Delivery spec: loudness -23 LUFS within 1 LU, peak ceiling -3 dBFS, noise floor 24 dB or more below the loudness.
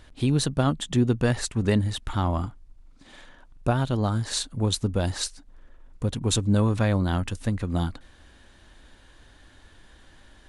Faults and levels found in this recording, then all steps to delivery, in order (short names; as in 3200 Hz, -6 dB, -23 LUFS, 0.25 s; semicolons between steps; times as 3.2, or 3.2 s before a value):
loudness -26.0 LUFS; peak -9.0 dBFS; loudness target -23.0 LUFS
-> gain +3 dB